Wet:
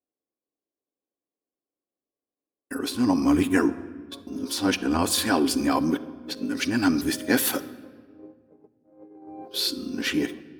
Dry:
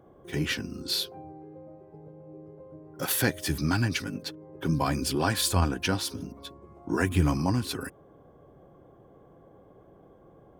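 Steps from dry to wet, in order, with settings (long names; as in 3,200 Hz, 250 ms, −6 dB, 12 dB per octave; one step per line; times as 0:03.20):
played backwards from end to start
noise gate −44 dBFS, range −44 dB
low shelf with overshoot 190 Hz −8.5 dB, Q 3
rectangular room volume 2,100 cubic metres, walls mixed, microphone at 0.41 metres
level +2.5 dB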